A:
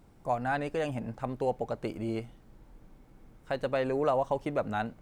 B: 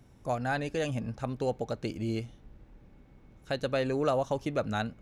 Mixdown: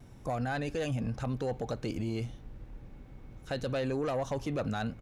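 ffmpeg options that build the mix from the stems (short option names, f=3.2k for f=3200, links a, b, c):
-filter_complex "[0:a]lowshelf=f=170:t=q:w=3:g=11,volume=-11.5dB[a];[1:a]aeval=exprs='0.168*sin(PI/2*1.78*val(0)/0.168)':c=same,adelay=3.8,volume=-4.5dB[b];[a][b]amix=inputs=2:normalize=0,alimiter=level_in=2dB:limit=-24dB:level=0:latency=1:release=31,volume=-2dB"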